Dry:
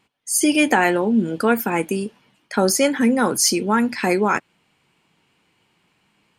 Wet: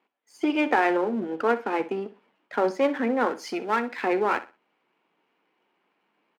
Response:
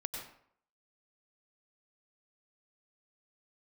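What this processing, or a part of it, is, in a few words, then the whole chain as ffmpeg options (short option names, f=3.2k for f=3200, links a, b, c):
crystal radio: -filter_complex "[0:a]highpass=280,lowpass=3k,lowpass=f=1.4k:p=1,aeval=exprs='if(lt(val(0),0),0.447*val(0),val(0))':c=same,highpass=230,asettb=1/sr,asplit=3[a][b][c];[a]atrim=end=3.284[d];[b]atrim=start=3.28:end=4.02,asetpts=PTS-STARTPTS,afade=t=in:d=0.004:c=qsin,afade=t=out:st=0.736:d=0.004:c=qsin,tiltshelf=f=970:g=-3.5[e];[c]atrim=start=4.016[f];[d][e]acrossfade=d=0.004:c1=hsin:c2=qsin[g];[g][f]acrossfade=d=0.004:c1=qsin:c2=hsin,aecho=1:1:62|124|186:0.178|0.0445|0.0111"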